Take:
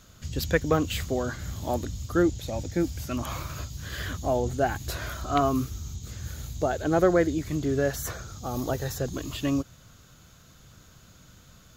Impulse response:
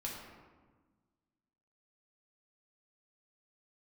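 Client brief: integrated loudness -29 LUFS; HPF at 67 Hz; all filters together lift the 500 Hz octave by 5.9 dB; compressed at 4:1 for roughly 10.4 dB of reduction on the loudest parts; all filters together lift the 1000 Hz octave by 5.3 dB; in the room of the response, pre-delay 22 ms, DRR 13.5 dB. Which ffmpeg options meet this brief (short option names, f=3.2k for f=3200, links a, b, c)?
-filter_complex "[0:a]highpass=67,equalizer=f=500:t=o:g=6,equalizer=f=1k:t=o:g=5,acompressor=threshold=-24dB:ratio=4,asplit=2[a][b];[1:a]atrim=start_sample=2205,adelay=22[c];[b][c]afir=irnorm=-1:irlink=0,volume=-14dB[d];[a][d]amix=inputs=2:normalize=0,volume=1dB"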